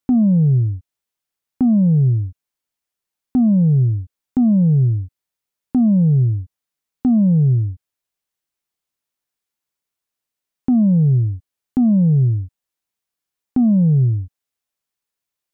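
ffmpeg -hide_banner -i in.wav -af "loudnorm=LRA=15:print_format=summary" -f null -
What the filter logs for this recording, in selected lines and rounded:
Input Integrated:    -16.6 LUFS
Input True Peak:     -10.6 dBTP
Input LRA:             3.6 LU
Input Threshold:     -27.1 LUFS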